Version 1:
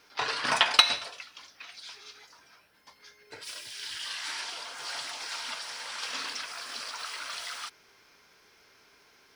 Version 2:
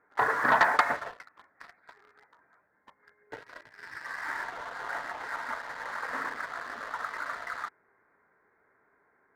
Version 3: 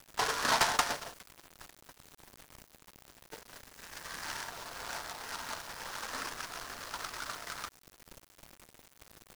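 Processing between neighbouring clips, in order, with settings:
elliptic low-pass 1900 Hz, stop band 40 dB; low shelf 83 Hz -8.5 dB; sample leveller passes 2
added noise pink -49 dBFS; bit-crush 7-bit; noise-modulated delay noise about 3400 Hz, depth 0.088 ms; gain -5.5 dB

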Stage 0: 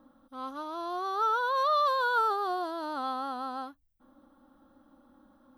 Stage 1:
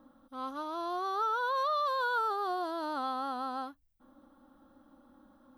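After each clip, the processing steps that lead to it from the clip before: compressor 2.5:1, threshold -30 dBFS, peak gain reduction 5.5 dB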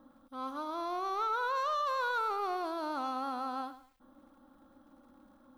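soft clip -27 dBFS, distortion -19 dB; lo-fi delay 0.104 s, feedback 35%, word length 10-bit, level -13 dB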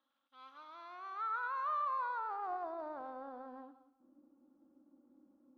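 thinning echo 0.183 s, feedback 26%, high-pass 160 Hz, level -14 dB; band-pass sweep 3200 Hz -> 320 Hz, 0.04–3.97; Doppler distortion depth 0.15 ms; gain -2.5 dB

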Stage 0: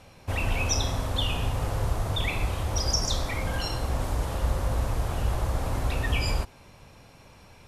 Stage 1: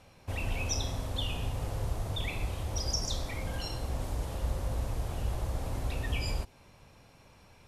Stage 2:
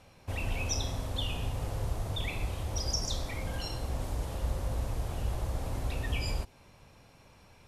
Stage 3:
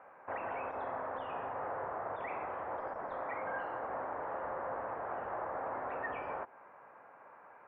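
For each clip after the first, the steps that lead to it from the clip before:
dynamic EQ 1300 Hz, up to -5 dB, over -47 dBFS, Q 1.1; gain -6 dB
nothing audible
HPF 710 Hz 12 dB/oct; soft clip -32.5 dBFS, distortion -13 dB; steep low-pass 1700 Hz 36 dB/oct; gain +9.5 dB

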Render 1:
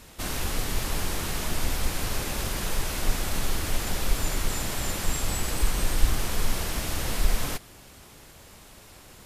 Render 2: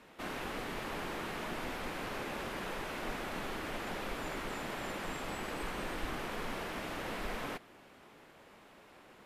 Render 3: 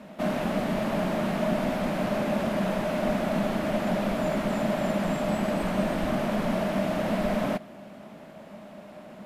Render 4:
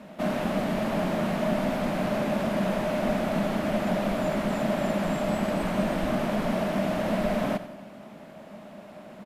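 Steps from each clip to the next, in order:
three-band isolator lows -18 dB, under 180 Hz, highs -17 dB, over 3000 Hz; gain -4 dB
small resonant body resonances 200/610 Hz, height 18 dB, ringing for 45 ms; gain +4.5 dB
feedback echo 90 ms, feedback 51%, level -14 dB

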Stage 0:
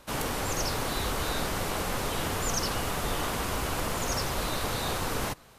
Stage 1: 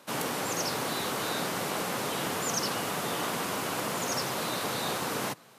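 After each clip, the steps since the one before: HPF 140 Hz 24 dB/oct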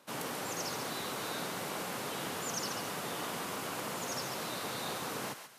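thinning echo 0.138 s, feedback 38%, high-pass 990 Hz, level -7 dB; gain -7 dB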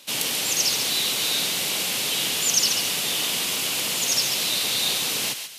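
resonant high shelf 2000 Hz +13 dB, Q 1.5; gain +4.5 dB

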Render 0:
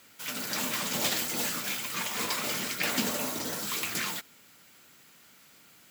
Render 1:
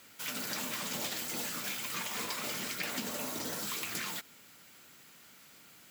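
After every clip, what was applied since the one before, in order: compressor, threshold -34 dBFS, peak gain reduction 10 dB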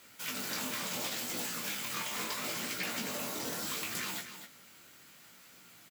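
chorus 0.72 Hz, delay 16 ms, depth 7.4 ms; echo 0.254 s -10 dB; gain +3 dB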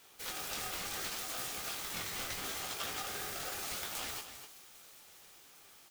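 thin delay 0.402 s, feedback 73%, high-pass 4200 Hz, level -16 dB; polarity switched at an audio rate 1000 Hz; gain -3 dB

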